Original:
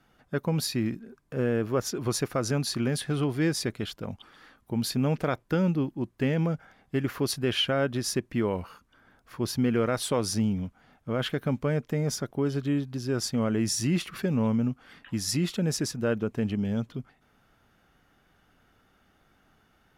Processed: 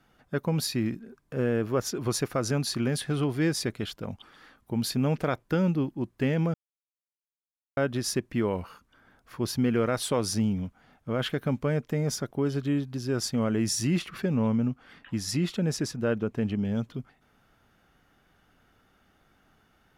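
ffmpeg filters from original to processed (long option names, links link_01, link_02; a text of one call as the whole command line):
ffmpeg -i in.wav -filter_complex "[0:a]asettb=1/sr,asplit=3[link_01][link_02][link_03];[link_01]atrim=end=13.994[link_04];[link_02]atrim=start=13.99:end=16.75,asetpts=PTS-STARTPTS,afade=type=in:duration=0.004:curve=qsin,afade=type=out:start_time=2.756:duration=0.004:curve=qsin,highshelf=frequency=6000:gain=-6.5[link_05];[link_03]atrim=start=16.746[link_06];[link_04][link_05]acrossfade=duration=0.004:curve1=hsin:curve2=qsin[link_07];[link_07][link_06]acrossfade=duration=0.004:curve1=qsin:curve2=hsin,asplit=3[link_08][link_09][link_10];[link_08]atrim=end=6.54,asetpts=PTS-STARTPTS,afade=type=out:start_time=6.536:duration=0.004:curve=hsin[link_11];[link_09]atrim=start=6.54:end=7.77,asetpts=PTS-STARTPTS,volume=0[link_12];[link_10]atrim=start=7.77,asetpts=PTS-STARTPTS,afade=type=in:duration=0.004:curve=hsin[link_13];[link_11][link_12][link_13]concat=n=3:v=0:a=1" out.wav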